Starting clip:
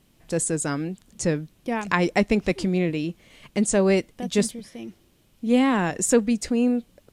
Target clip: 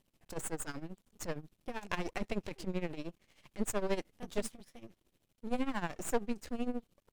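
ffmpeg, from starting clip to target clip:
-af "aeval=exprs='max(val(0),0)':c=same,tremolo=f=13:d=0.81,volume=-7dB"

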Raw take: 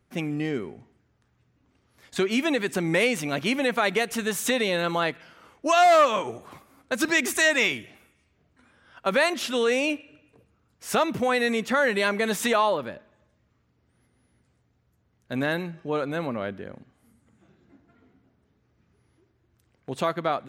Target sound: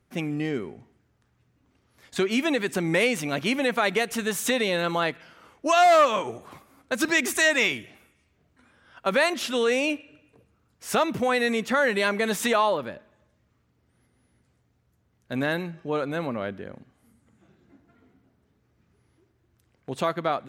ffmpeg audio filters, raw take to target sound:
-ar 48000 -c:a sbc -b:a 192k

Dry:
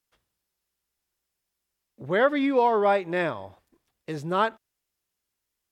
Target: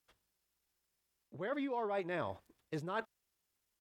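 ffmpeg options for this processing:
-af "areverse,acompressor=threshold=-33dB:ratio=16,areverse,atempo=1.5,volume=-1dB"

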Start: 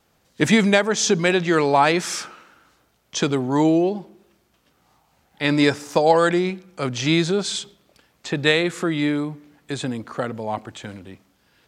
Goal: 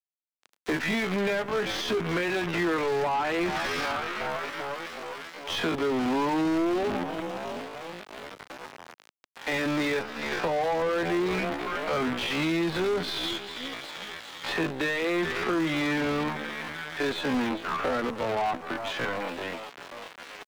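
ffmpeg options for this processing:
-filter_complex "[0:a]asplit=7[a][b][c][d][e][f][g];[b]adelay=220,afreqshift=-68,volume=-19dB[h];[c]adelay=440,afreqshift=-136,volume=-23dB[i];[d]adelay=660,afreqshift=-204,volume=-27dB[j];[e]adelay=880,afreqshift=-272,volume=-31dB[k];[f]adelay=1100,afreqshift=-340,volume=-35.1dB[l];[g]adelay=1320,afreqshift=-408,volume=-39.1dB[m];[a][h][i][j][k][l][m]amix=inputs=7:normalize=0,acompressor=threshold=-19dB:ratio=16,lowpass=f=6.3k:w=0.5412,lowpass=f=6.3k:w=1.3066,acrossover=split=250 4600:gain=0.2 1 0.0794[n][o][p];[n][o][p]amix=inputs=3:normalize=0,asplit=2[q][r];[r]adelay=12,volume=-8dB[s];[q][s]amix=inputs=2:normalize=0,acrusher=bits=6:dc=4:mix=0:aa=0.000001,acrossover=split=240[t][u];[u]acompressor=threshold=-35dB:ratio=8[v];[t][v]amix=inputs=2:normalize=0,asplit=2[w][x];[x]highpass=f=720:p=1,volume=25dB,asoftclip=type=tanh:threshold=-21dB[y];[w][y]amix=inputs=2:normalize=0,lowpass=f=2.8k:p=1,volume=-6dB,atempo=0.57,adynamicequalizer=threshold=0.00316:dfrequency=4800:dqfactor=0.7:tfrequency=4800:tqfactor=0.7:attack=5:release=100:ratio=0.375:range=2:mode=cutabove:tftype=highshelf,volume=2dB"

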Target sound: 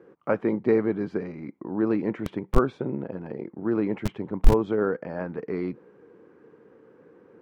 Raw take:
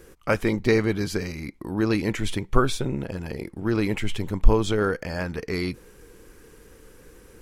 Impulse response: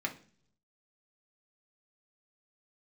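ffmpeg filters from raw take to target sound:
-filter_complex "[0:a]lowpass=1.1k,acrossover=split=140[a][b];[a]aeval=exprs='val(0)*gte(abs(val(0)),0.126)':c=same[c];[c][b]amix=inputs=2:normalize=0"

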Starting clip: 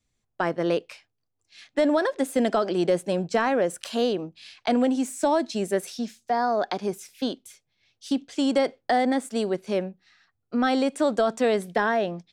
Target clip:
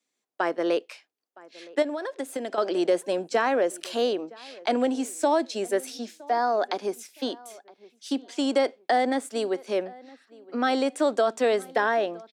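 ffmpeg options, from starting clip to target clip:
-filter_complex "[0:a]highpass=f=270:w=0.5412,highpass=f=270:w=1.3066,asettb=1/sr,asplit=3[a][b][c];[a]atrim=end=1.824[d];[b]atrim=start=1.82:end=2.58,asetpts=PTS-STARTPTS,afade=t=in:d=0.004:c=qsin,afade=t=out:st=0.756:d=0.004:c=qsin,acompressor=threshold=-28dB:ratio=10[e];[c]atrim=start=2.576[f];[d][e]acrossfade=d=0.004:c1=hsin:c2=qsin[g];[g][f]acrossfade=d=0.004:c1=qsin:c2=hsin,asplit=2[h][i];[i]adelay=965,lowpass=f=2k:p=1,volume=-22dB,asplit=2[j][k];[k]adelay=965,lowpass=f=2k:p=1,volume=0.29[l];[j][l]amix=inputs=2:normalize=0[m];[h][m]amix=inputs=2:normalize=0"

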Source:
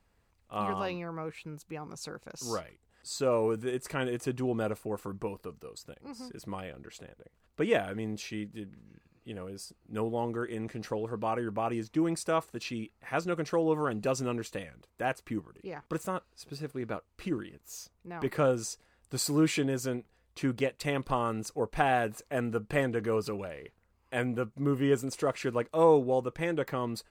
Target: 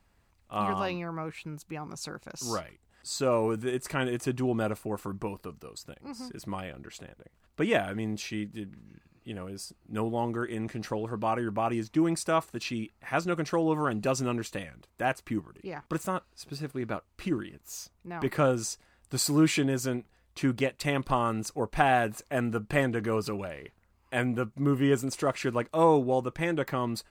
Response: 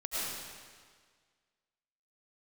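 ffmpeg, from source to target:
-af "equalizer=f=470:t=o:w=0.33:g=-6,volume=3.5dB"

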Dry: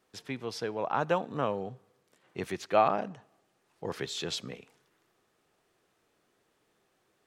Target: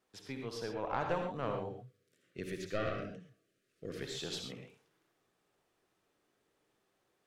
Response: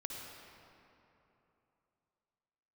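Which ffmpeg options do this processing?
-filter_complex "[0:a]aeval=exprs='(tanh(7.94*val(0)+0.6)-tanh(0.6))/7.94':c=same,asettb=1/sr,asplit=3[a][b][c];[a]atrim=end=1.734[d];[b]atrim=start=1.73:end=4.02,asetpts=PTS-STARTPTS,afade=t=in:d=0.004:c=qsin,afade=t=out:st=2.286:d=0.004:c=qsin,asuperstop=centerf=880:order=4:qfactor=1.1[e];[c]atrim=start=4.016[f];[d][e]acrossfade=d=0.004:c1=hsin:c2=qsin[g];[g][f]acrossfade=d=0.004:c1=qsin:c2=hsin[h];[1:a]atrim=start_sample=2205,atrim=end_sample=6174[i];[h][i]afir=irnorm=-1:irlink=0"

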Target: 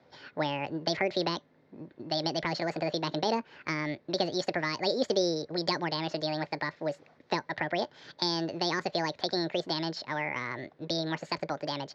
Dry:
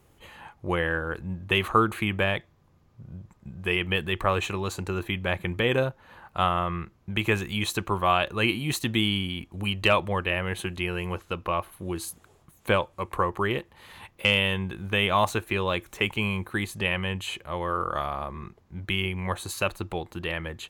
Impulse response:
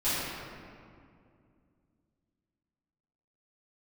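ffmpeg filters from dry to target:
-filter_complex "[0:a]acrossover=split=290|3000[a][b][c];[b]acompressor=threshold=-29dB:ratio=6[d];[a][d][c]amix=inputs=3:normalize=0,asetrate=76440,aresample=44100,highpass=150,equalizer=f=190:t=q:w=4:g=-8,equalizer=f=500:t=q:w=4:g=7,equalizer=f=1.3k:t=q:w=4:g=-4,equalizer=f=2.9k:t=q:w=4:g=-7,lowpass=f=4.6k:w=0.5412,lowpass=f=4.6k:w=1.3066"

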